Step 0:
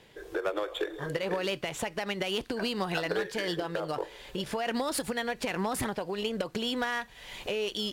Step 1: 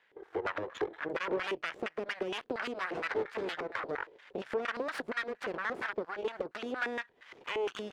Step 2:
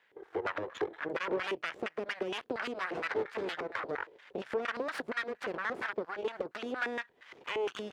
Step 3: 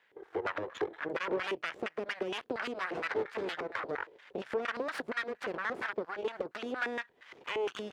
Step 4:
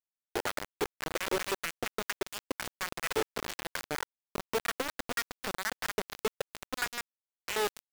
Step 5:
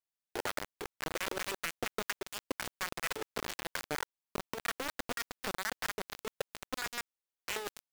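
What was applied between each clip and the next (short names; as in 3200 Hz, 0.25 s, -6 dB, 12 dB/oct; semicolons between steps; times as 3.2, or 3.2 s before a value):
added harmonics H 6 -6 dB, 7 -28 dB, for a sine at -18 dBFS; LFO band-pass square 4.3 Hz 410–1600 Hz
HPF 54 Hz
nothing audible
bit-crush 5-bit
negative-ratio compressor -32 dBFS, ratio -0.5; gain -2.5 dB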